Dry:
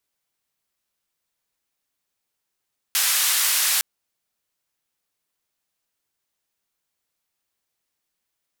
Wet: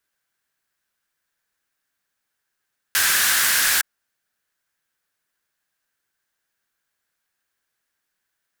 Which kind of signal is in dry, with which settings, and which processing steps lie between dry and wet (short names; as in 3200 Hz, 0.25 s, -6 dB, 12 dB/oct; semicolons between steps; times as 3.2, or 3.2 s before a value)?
noise band 1300–15000 Hz, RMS -20.5 dBFS 0.86 s
block floating point 3-bit; bell 1600 Hz +12.5 dB 0.47 oct